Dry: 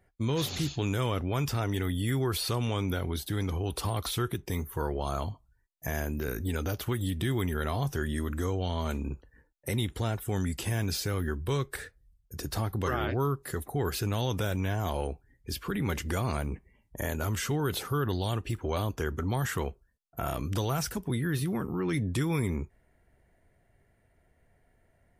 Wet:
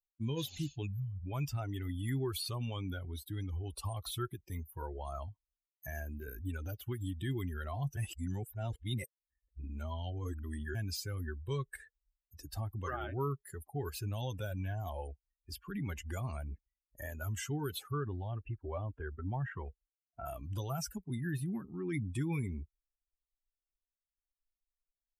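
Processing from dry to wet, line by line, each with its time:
0:00.87–0:01.26: gain on a spectral selection 210–12,000 Hz −21 dB
0:07.97–0:10.75: reverse
0:17.91–0:20.26: low-pass filter 2,300 Hz
whole clip: spectral dynamics exaggerated over time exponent 2; notch filter 470 Hz, Q 12; level −3 dB

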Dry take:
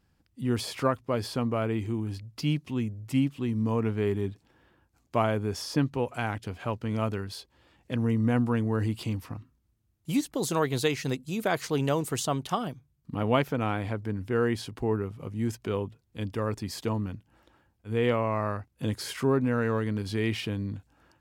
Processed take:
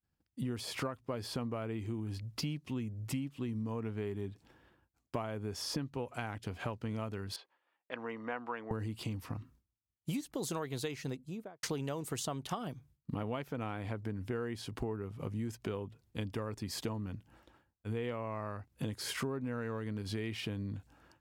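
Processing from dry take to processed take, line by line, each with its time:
0:07.36–0:08.71: band-pass filter 740–2,100 Hz
0:10.79–0:11.63: fade out and dull
whole clip: downward expander −57 dBFS; downward compressor 12 to 1, threshold −36 dBFS; level +2 dB

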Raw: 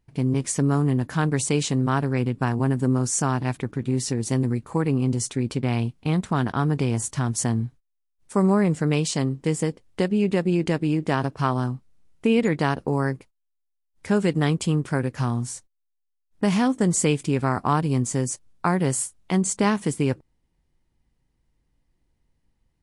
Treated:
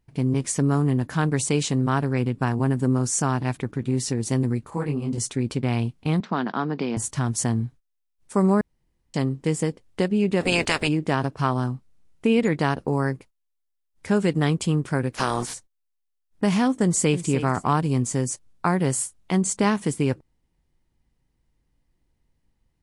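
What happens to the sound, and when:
0:04.70–0:05.18: micro pitch shift up and down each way 52 cents
0:06.20–0:06.97: elliptic band-pass filter 190–4,900 Hz
0:08.61–0:09.14: fill with room tone
0:10.40–0:10.87: ceiling on every frequency bin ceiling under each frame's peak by 27 dB
0:15.12–0:15.53: ceiling on every frequency bin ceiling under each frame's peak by 24 dB
0:16.83–0:17.28: delay throw 300 ms, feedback 25%, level −11.5 dB

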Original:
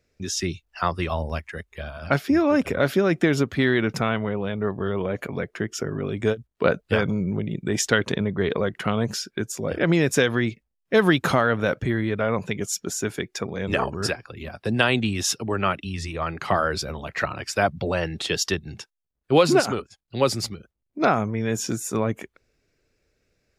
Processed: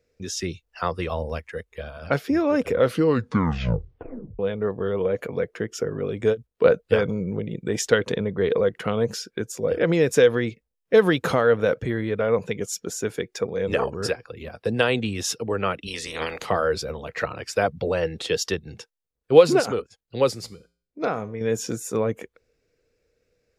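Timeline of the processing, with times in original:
0:02.73: tape stop 1.66 s
0:15.86–0:16.44: ceiling on every frequency bin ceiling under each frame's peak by 27 dB
0:20.31–0:21.41: tuned comb filter 58 Hz, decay 0.46 s, harmonics odd, mix 50%
whole clip: parametric band 480 Hz +13 dB 0.26 octaves; level −3 dB

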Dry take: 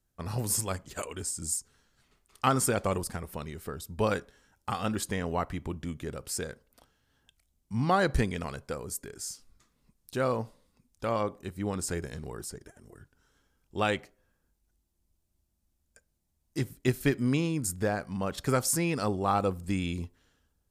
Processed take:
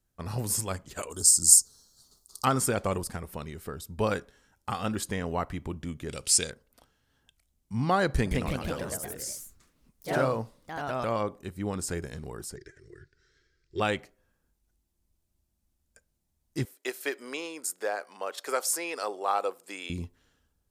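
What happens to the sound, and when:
0:01.10–0:02.45: drawn EQ curve 1,200 Hz 0 dB, 2,400 Hz −24 dB, 4,300 Hz +15 dB
0:06.09–0:06.50: flat-topped bell 4,800 Hz +13 dB 2.5 octaves
0:08.08–0:11.21: delay with pitch and tempo change per echo 173 ms, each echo +2 semitones, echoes 3
0:12.56–0:13.80: drawn EQ curve 160 Hz 0 dB, 220 Hz −20 dB, 370 Hz +8 dB, 540 Hz −7 dB, 780 Hz −23 dB, 1,900 Hz +10 dB, 3,000 Hz −3 dB, 4,400 Hz +10 dB, 8,700 Hz −9 dB, 13,000 Hz −28 dB
0:16.65–0:19.90: high-pass filter 430 Hz 24 dB per octave

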